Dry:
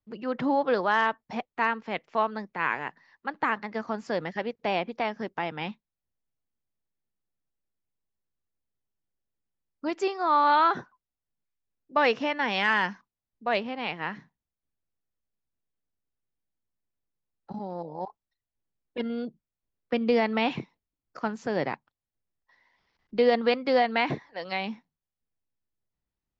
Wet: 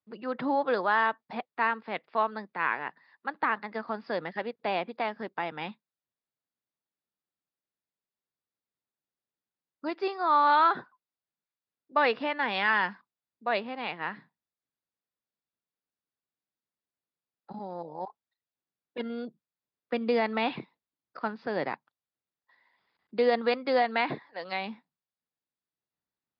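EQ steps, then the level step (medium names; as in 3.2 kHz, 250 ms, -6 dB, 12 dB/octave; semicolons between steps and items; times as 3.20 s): Bessel high-pass 180 Hz; rippled Chebyshev low-pass 5 kHz, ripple 3 dB; band-stop 3.1 kHz, Q 17; 0.0 dB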